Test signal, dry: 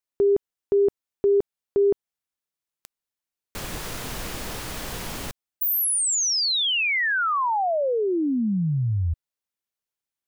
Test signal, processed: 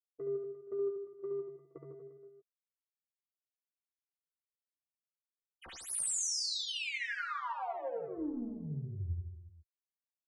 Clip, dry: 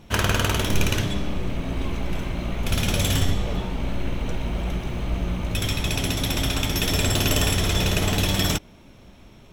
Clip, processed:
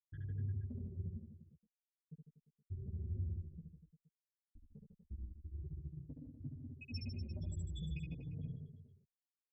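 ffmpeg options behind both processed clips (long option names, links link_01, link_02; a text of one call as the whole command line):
ffmpeg -i in.wav -filter_complex "[0:a]highpass=frequency=110:poles=1,afftfilt=real='re*gte(hypot(re,im),0.398)':imag='im*gte(hypot(re,im),0.398)':win_size=1024:overlap=0.75,bandreject=frequency=3300:width=5.1,adynamicequalizer=threshold=0.0158:dfrequency=480:dqfactor=3.2:tfrequency=480:tqfactor=3.2:attack=5:release=100:ratio=0.438:range=1.5:mode=cutabove:tftype=bell,acrossover=split=6300[link_01][link_02];[link_01]acompressor=threshold=-34dB:ratio=6:attack=7.4:release=125:knee=1:detection=rms[link_03];[link_03][link_02]amix=inputs=2:normalize=0,asoftclip=type=tanh:threshold=-29.5dB,tremolo=f=260:d=0.261,asplit=2[link_04][link_05];[link_05]adelay=13,volume=-4dB[link_06];[link_04][link_06]amix=inputs=2:normalize=0,aecho=1:1:70|150.5|243.1|349.5|472:0.631|0.398|0.251|0.158|0.1,aresample=22050,aresample=44100,asplit=2[link_07][link_08];[link_08]adelay=4.1,afreqshift=-0.48[link_09];[link_07][link_09]amix=inputs=2:normalize=1,volume=-2.5dB" out.wav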